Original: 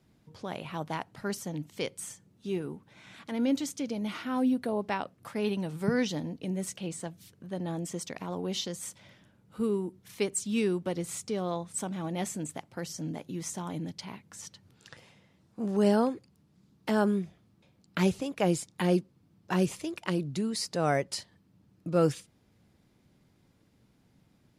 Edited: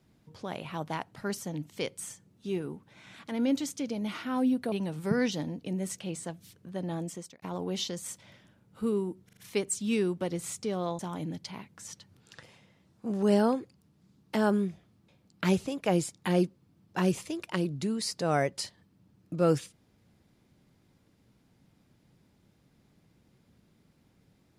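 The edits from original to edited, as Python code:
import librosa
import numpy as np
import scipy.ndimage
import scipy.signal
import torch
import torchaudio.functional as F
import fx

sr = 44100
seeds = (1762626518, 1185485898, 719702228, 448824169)

y = fx.edit(x, sr, fx.cut(start_s=4.72, length_s=0.77),
    fx.fade_out_span(start_s=7.77, length_s=0.42),
    fx.stutter(start_s=10.02, slice_s=0.04, count=4),
    fx.cut(start_s=11.64, length_s=1.89), tone=tone)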